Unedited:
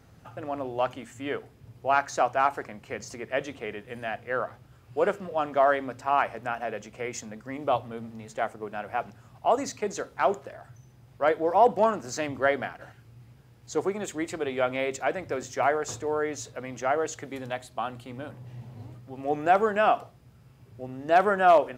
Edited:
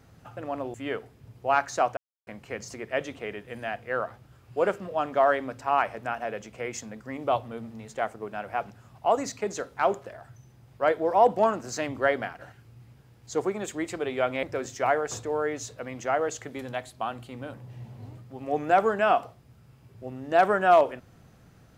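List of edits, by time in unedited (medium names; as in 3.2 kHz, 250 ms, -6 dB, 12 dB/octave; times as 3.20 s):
0.74–1.14 s: delete
2.37–2.67 s: mute
14.83–15.20 s: delete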